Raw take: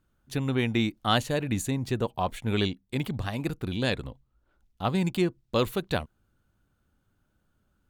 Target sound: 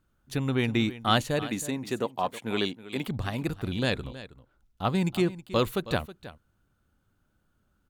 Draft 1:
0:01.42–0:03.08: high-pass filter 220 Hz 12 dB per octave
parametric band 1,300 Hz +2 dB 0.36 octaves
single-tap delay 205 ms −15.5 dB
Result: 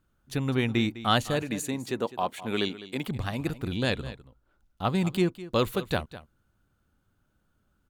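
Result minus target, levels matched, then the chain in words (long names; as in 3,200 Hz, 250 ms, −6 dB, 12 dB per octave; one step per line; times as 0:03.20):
echo 115 ms early
0:01.42–0:03.08: high-pass filter 220 Hz 12 dB per octave
parametric band 1,300 Hz +2 dB 0.36 octaves
single-tap delay 320 ms −15.5 dB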